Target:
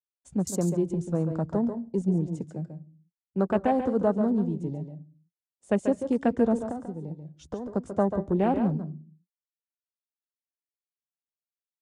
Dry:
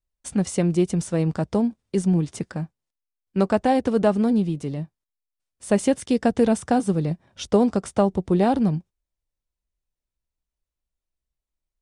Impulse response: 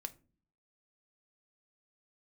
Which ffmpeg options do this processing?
-filter_complex "[0:a]acrossover=split=190|830[s0][s1][s2];[s1]acompressor=mode=upward:threshold=0.00794:ratio=2.5[s3];[s0][s3][s2]amix=inputs=3:normalize=0,agate=range=0.0224:threshold=0.00708:ratio=3:detection=peak,equalizer=f=7000:w=4.2:g=8.5,afwtdn=0.0224,asettb=1/sr,asplit=3[s4][s5][s6];[s4]atrim=end=6.564[s7];[s5]atrim=start=6.56:end=7.75,asetpts=PTS-STARTPTS,afade=t=in:d=0.004:c=qsin,afade=t=out:st=1.186:d=0.004:c=qsin,acompressor=threshold=0.0447:ratio=10[s8];[s6]atrim=start=7.746[s9];[s7][s8]acrossfade=d=0.004:c1=hsin:c2=qsin[s10];[s10][s9]acrossfade=d=0.004:c1=qsin:c2=hsin,asplit=2[s11][s12];[1:a]atrim=start_sample=2205,afade=t=out:st=0.37:d=0.01,atrim=end_sample=16758,adelay=139[s13];[s12][s13]afir=irnorm=-1:irlink=0,volume=0.596[s14];[s11][s14]amix=inputs=2:normalize=0,volume=0.562"

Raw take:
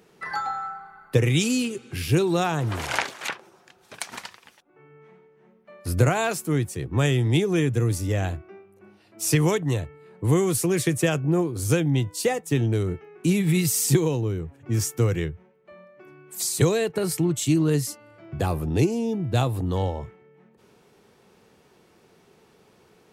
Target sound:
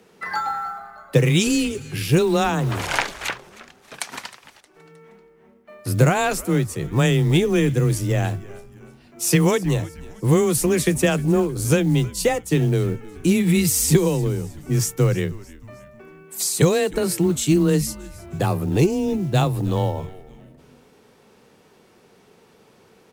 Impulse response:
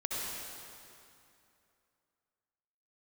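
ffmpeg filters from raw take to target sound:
-filter_complex "[0:a]afreqshift=17,acrusher=bits=8:mode=log:mix=0:aa=0.000001,asplit=4[s0][s1][s2][s3];[s1]adelay=312,afreqshift=-120,volume=0.106[s4];[s2]adelay=624,afreqshift=-240,volume=0.0468[s5];[s3]adelay=936,afreqshift=-360,volume=0.0204[s6];[s0][s4][s5][s6]amix=inputs=4:normalize=0,volume=1.5"

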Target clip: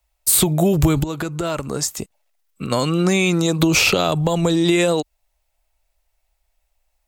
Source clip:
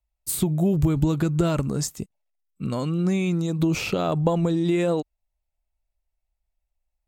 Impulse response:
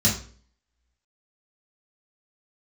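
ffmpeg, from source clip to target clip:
-filter_complex "[0:a]equalizer=f=320:w=1.1:g=-8.5,asplit=3[s0][s1][s2];[s0]afade=t=out:st=1.02:d=0.02[s3];[s1]acompressor=threshold=0.0224:ratio=16,afade=t=in:st=1.02:d=0.02,afade=t=out:st=2.7:d=0.02[s4];[s2]afade=t=in:st=2.7:d=0.02[s5];[s3][s4][s5]amix=inputs=3:normalize=0,lowshelf=f=240:t=q:w=1.5:g=-8,acrossover=split=230|3000[s6][s7][s8];[s7]acompressor=threshold=0.02:ratio=6[s9];[s6][s9][s8]amix=inputs=3:normalize=0,alimiter=level_in=10:limit=0.891:release=50:level=0:latency=1,volume=0.668"

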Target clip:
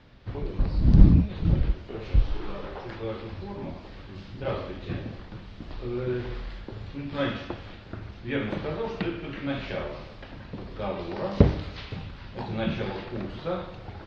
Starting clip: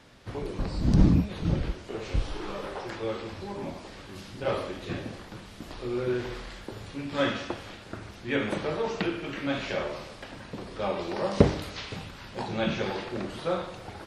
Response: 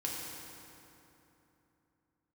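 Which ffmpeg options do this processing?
-af "lowpass=f=4700:w=0.5412,lowpass=f=4700:w=1.3066,lowshelf=f=150:g=11.5,volume=0.708"

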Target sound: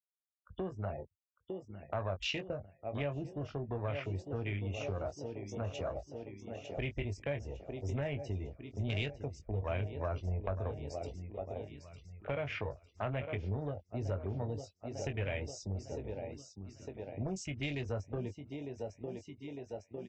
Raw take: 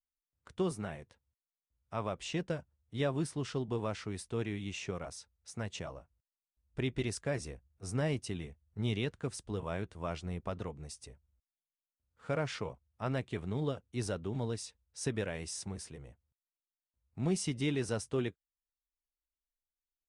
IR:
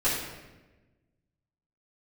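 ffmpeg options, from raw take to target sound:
-filter_complex "[0:a]afftfilt=real='re*gte(hypot(re,im),0.00562)':imag='im*gte(hypot(re,im),0.00562)':win_size=1024:overlap=0.75,aecho=1:1:903|1806|2709|3612|4515|5418:0.251|0.133|0.0706|0.0374|0.0198|0.0105,afwtdn=0.00631,aemphasis=mode=production:type=50kf,bandreject=f=2600:w=29,asplit=2[s0][s1];[s1]adelay=21,volume=0.376[s2];[s0][s2]amix=inputs=2:normalize=0,acrossover=split=140[s3][s4];[s4]acompressor=threshold=0.00398:ratio=5[s5];[s3][s5]amix=inputs=2:normalize=0,aresample=16000,aresample=44100,asoftclip=type=tanh:threshold=0.0251,equalizer=f=160:t=o:w=0.67:g=-10,equalizer=f=630:t=o:w=0.67:g=8,equalizer=f=2500:t=o:w=0.67:g=12,volume=2.51" -ar 24000 -c:a aac -b:a 96k

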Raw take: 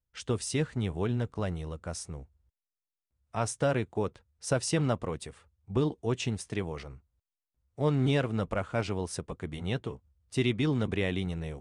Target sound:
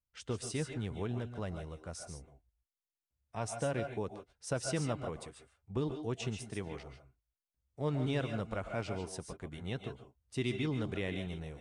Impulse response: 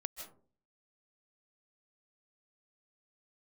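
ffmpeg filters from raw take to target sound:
-filter_complex "[0:a]asettb=1/sr,asplit=3[s0][s1][s2];[s0]atrim=end=2.064[s3];[s1]atrim=start=2.06:end=4.07,asetpts=PTS-STARTPTS,afade=t=in:d=0.004:c=qsin,afade=t=out:st=2.006:d=0.004:c=qsin,bandreject=f=1300:w=9.2[s4];[s2]atrim=start=4.066[s5];[s3][s4]acrossfade=d=0.004:c1=hsin:c2=qsin[s6];[s6][s5]acrossfade=d=0.004:c1=qsin:c2=hsin[s7];[1:a]atrim=start_sample=2205,afade=t=out:st=0.23:d=0.01,atrim=end_sample=10584,asetrate=48510,aresample=44100[s8];[s7][s8]afir=irnorm=-1:irlink=0,volume=0.668"

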